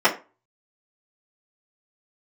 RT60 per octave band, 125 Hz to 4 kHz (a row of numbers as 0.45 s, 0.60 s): 0.35 s, 0.30 s, 0.30 s, 0.30 s, 0.30 s, 0.20 s